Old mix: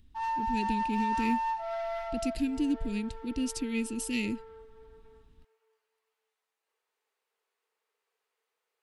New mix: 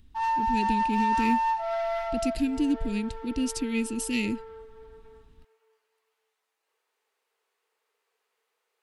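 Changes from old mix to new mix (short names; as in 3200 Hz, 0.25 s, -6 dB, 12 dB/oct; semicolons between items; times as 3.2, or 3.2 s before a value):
speech +3.5 dB; background +5.5 dB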